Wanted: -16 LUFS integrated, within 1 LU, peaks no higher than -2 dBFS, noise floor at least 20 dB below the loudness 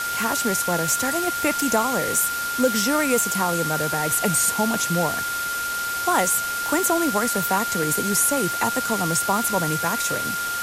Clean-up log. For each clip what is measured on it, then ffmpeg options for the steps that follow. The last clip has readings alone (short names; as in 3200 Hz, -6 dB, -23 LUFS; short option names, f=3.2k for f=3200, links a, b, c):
steady tone 1400 Hz; tone level -25 dBFS; noise floor -27 dBFS; noise floor target -41 dBFS; loudness -21.0 LUFS; peak -7.5 dBFS; loudness target -16.0 LUFS
-> -af "bandreject=f=1.4k:w=30"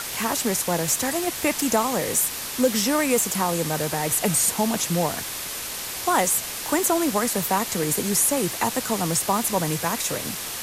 steady tone none; noise floor -32 dBFS; noise floor target -43 dBFS
-> -af "afftdn=nr=11:nf=-32"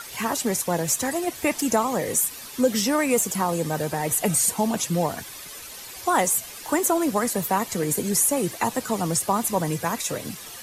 noise floor -40 dBFS; noise floor target -44 dBFS
-> -af "afftdn=nr=6:nf=-40"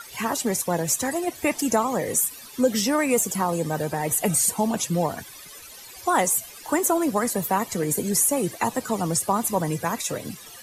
noise floor -43 dBFS; noise floor target -44 dBFS
-> -af "afftdn=nr=6:nf=-43"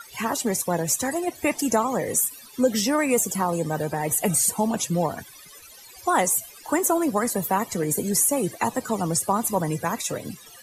noise floor -47 dBFS; loudness -23.5 LUFS; peak -8.5 dBFS; loudness target -16.0 LUFS
-> -af "volume=7.5dB,alimiter=limit=-2dB:level=0:latency=1"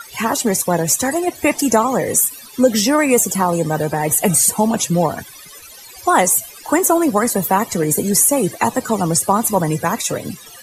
loudness -16.0 LUFS; peak -2.0 dBFS; noise floor -39 dBFS